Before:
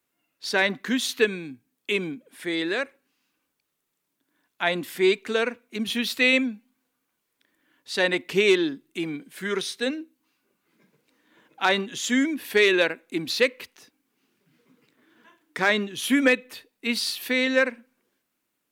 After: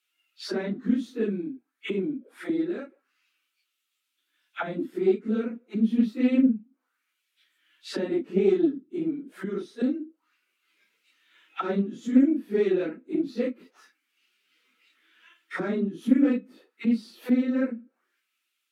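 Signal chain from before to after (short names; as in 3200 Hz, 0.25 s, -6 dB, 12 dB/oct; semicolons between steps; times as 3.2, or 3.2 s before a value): phase scrambler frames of 0.1 s; small resonant body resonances 220/320/1300 Hz, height 11 dB, ringing for 25 ms; auto-wah 220–2900 Hz, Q 2.1, down, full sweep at -20.5 dBFS; RIAA curve recording; Doppler distortion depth 0.16 ms; gain +2.5 dB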